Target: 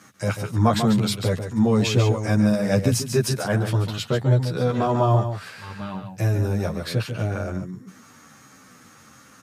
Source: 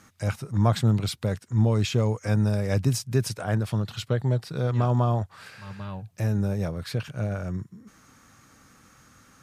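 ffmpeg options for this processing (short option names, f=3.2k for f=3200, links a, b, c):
-filter_complex "[0:a]highpass=120,asplit=2[a][b];[b]aecho=0:1:142:0.398[c];[a][c]amix=inputs=2:normalize=0,asplit=2[d][e];[e]adelay=10.9,afreqshift=-1.2[f];[d][f]amix=inputs=2:normalize=1,volume=8.5dB"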